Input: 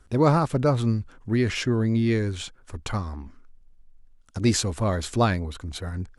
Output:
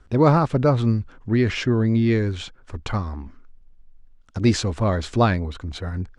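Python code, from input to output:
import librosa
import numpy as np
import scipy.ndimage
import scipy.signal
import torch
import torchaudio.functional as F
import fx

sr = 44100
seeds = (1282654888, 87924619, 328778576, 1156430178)

y = fx.air_absorb(x, sr, metres=99.0)
y = F.gain(torch.from_numpy(y), 3.5).numpy()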